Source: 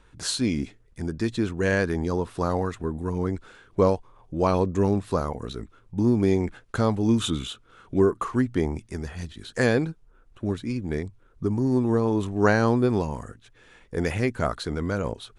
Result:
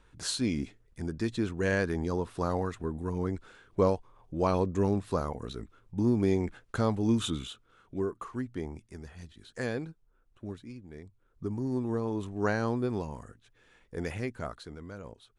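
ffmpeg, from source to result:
ffmpeg -i in.wav -af "volume=5.5dB,afade=type=out:start_time=7.17:duration=0.77:silence=0.446684,afade=type=out:start_time=10.44:duration=0.48:silence=0.421697,afade=type=in:start_time=10.92:duration=0.53:silence=0.298538,afade=type=out:start_time=14.12:duration=0.68:silence=0.421697" out.wav

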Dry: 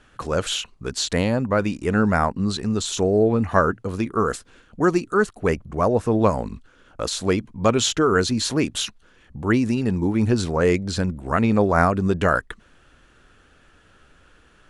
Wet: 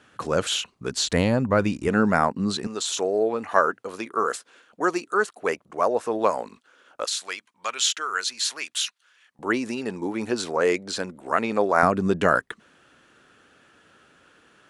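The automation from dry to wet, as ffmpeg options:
ffmpeg -i in.wav -af "asetnsamples=nb_out_samples=441:pad=0,asendcmd='0.95 highpass f 61;1.88 highpass f 170;2.67 highpass f 480;7.05 highpass f 1500;9.39 highpass f 390;11.83 highpass f 170',highpass=130" out.wav

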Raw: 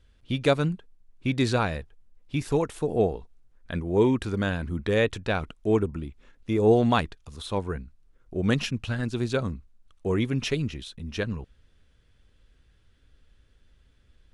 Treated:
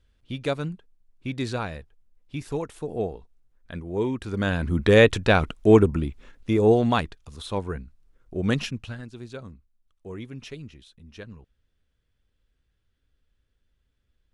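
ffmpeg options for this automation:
ffmpeg -i in.wav -af "volume=8dB,afade=type=in:start_time=4.22:duration=0.67:silence=0.223872,afade=type=out:start_time=6.03:duration=0.75:silence=0.398107,afade=type=out:start_time=8.56:duration=0.51:silence=0.251189" out.wav

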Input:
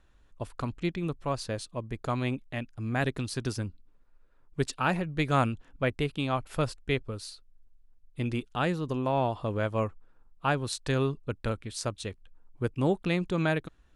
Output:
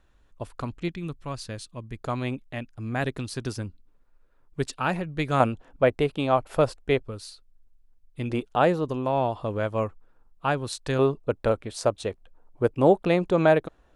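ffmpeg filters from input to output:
ffmpeg -i in.wav -af "asetnsamples=nb_out_samples=441:pad=0,asendcmd='0.88 equalizer g -6;2.01 equalizer g 2;5.4 equalizer g 11;7 equalizer g 1.5;8.3 equalizer g 12.5;8.85 equalizer g 3.5;10.99 equalizer g 13',equalizer=frequency=620:width_type=o:width=1.8:gain=2" out.wav

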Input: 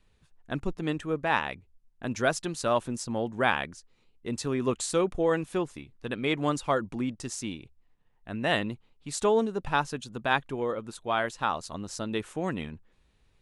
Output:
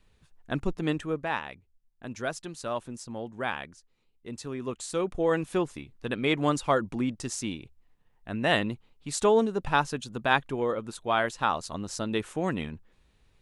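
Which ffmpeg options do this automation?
ffmpeg -i in.wav -af "volume=10.5dB,afade=type=out:start_time=0.92:duration=0.48:silence=0.375837,afade=type=in:start_time=4.81:duration=0.7:silence=0.375837" out.wav

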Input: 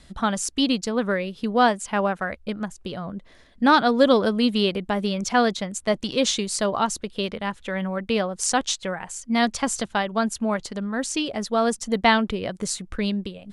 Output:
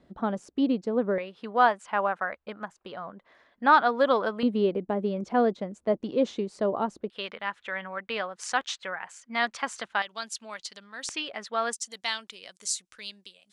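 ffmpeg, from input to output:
ffmpeg -i in.wav -af "asetnsamples=nb_out_samples=441:pad=0,asendcmd='1.18 bandpass f 1100;4.43 bandpass f 400;7.1 bandpass f 1600;10.02 bandpass f 4300;11.09 bandpass f 1800;11.73 bandpass f 6600',bandpass=frequency=400:width_type=q:width=1:csg=0" out.wav

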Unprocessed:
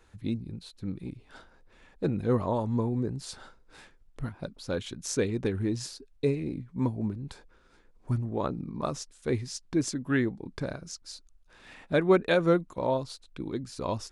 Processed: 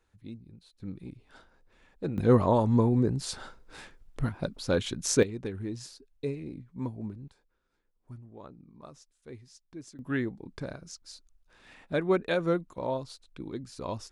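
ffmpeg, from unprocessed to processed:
ffmpeg -i in.wav -af "asetnsamples=nb_out_samples=441:pad=0,asendcmd='0.8 volume volume -4.5dB;2.18 volume volume 5dB;5.23 volume volume -6.5dB;7.28 volume volume -17dB;9.99 volume volume -4dB',volume=-12dB" out.wav

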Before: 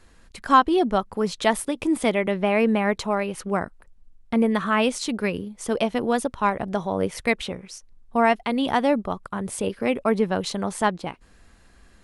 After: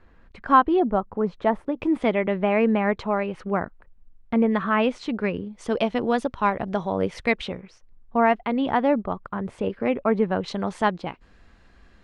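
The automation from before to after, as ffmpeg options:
ffmpeg -i in.wav -af "asetnsamples=nb_out_samples=441:pad=0,asendcmd='0.8 lowpass f 1200;1.77 lowpass f 2500;5.53 lowpass f 4400;7.61 lowpass f 2200;10.48 lowpass f 4100',lowpass=2000" out.wav

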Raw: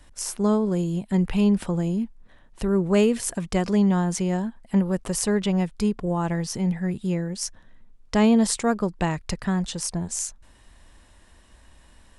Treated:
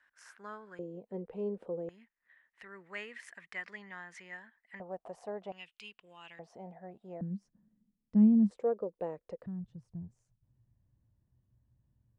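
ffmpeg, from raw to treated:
ffmpeg -i in.wav -af "asetnsamples=nb_out_samples=441:pad=0,asendcmd='0.79 bandpass f 480;1.89 bandpass f 1900;4.8 bandpass f 700;5.52 bandpass f 2800;6.39 bandpass f 680;7.21 bandpass f 200;8.51 bandpass f 500;9.46 bandpass f 120',bandpass=frequency=1600:width_type=q:width=6.6:csg=0" out.wav

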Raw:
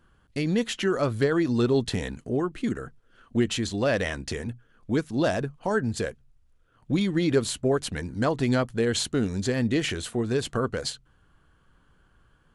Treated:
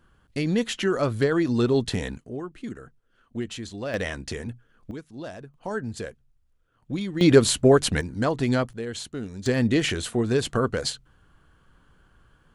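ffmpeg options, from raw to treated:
ffmpeg -i in.wav -af "asetnsamples=nb_out_samples=441:pad=0,asendcmd='2.18 volume volume -7.5dB;3.94 volume volume -1dB;4.91 volume volume -13dB;5.54 volume volume -5dB;7.21 volume volume 7.5dB;8.01 volume volume 0.5dB;8.73 volume volume -8dB;9.46 volume volume 3dB',volume=1dB" out.wav

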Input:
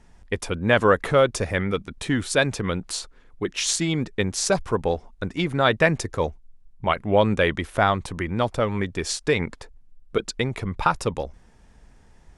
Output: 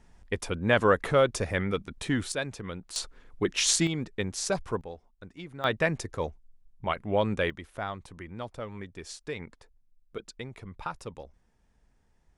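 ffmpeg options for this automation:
ffmpeg -i in.wav -af "asetnsamples=nb_out_samples=441:pad=0,asendcmd='2.32 volume volume -12dB;2.96 volume volume -0.5dB;3.87 volume volume -7.5dB;4.81 volume volume -18dB;5.64 volume volume -7.5dB;7.5 volume volume -15dB',volume=-4.5dB" out.wav

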